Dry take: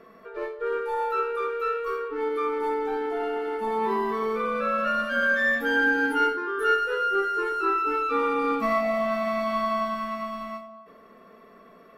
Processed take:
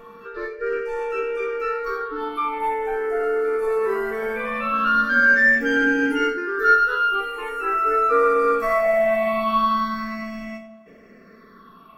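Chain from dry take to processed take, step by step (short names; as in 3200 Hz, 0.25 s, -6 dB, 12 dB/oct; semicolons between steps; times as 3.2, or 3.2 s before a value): phaser stages 6, 0.21 Hz, lowest notch 220–1100 Hz; reverse echo 0.913 s -19 dB; gain +7.5 dB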